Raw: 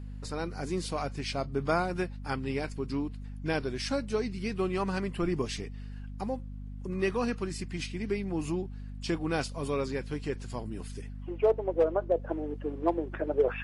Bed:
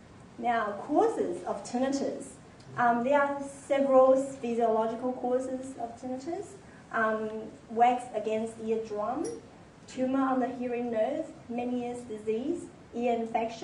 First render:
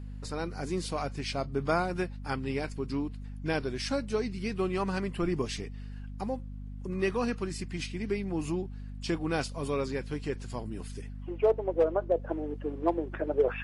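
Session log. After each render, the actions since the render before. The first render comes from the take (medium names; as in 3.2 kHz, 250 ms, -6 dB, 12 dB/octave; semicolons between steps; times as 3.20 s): no audible change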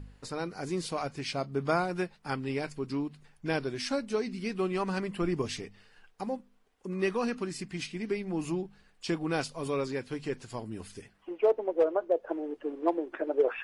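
de-hum 50 Hz, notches 5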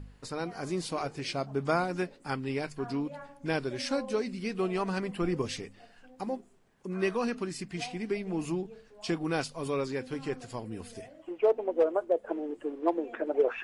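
add bed -20.5 dB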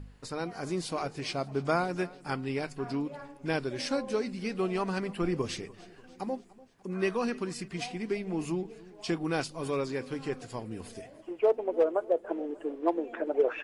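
feedback delay 294 ms, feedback 57%, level -21.5 dB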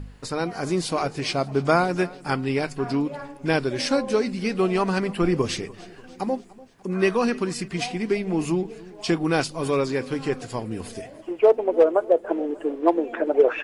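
trim +8.5 dB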